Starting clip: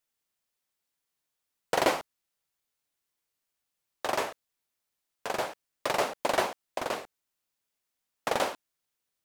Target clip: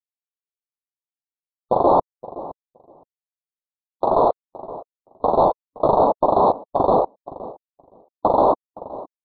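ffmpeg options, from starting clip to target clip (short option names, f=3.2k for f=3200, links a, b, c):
-filter_complex "[0:a]afftfilt=real='re*gte(hypot(re,im),0.00794)':imag='im*gte(hypot(re,im),0.00794)':win_size=1024:overlap=0.75,areverse,acompressor=threshold=-36dB:ratio=12,areverse,acrusher=samples=9:mix=1:aa=0.000001:lfo=1:lforange=5.4:lforate=0.93,asetrate=46722,aresample=44100,atempo=0.943874,asplit=2[a][b];[b]adelay=518,lowpass=f=820:p=1,volume=-20dB,asplit=2[c][d];[d]adelay=518,lowpass=f=820:p=1,volume=0.17[e];[a][c][e]amix=inputs=3:normalize=0,acrusher=bits=2:mode=log:mix=0:aa=0.000001,aexciter=amount=1.3:drive=9.7:freq=2.7k,aresample=8000,aresample=44100,asuperstop=centerf=2300:order=12:qfactor=0.61,alimiter=level_in=35.5dB:limit=-1dB:release=50:level=0:latency=1,volume=-5.5dB" -ar 48000 -c:a aac -b:a 160k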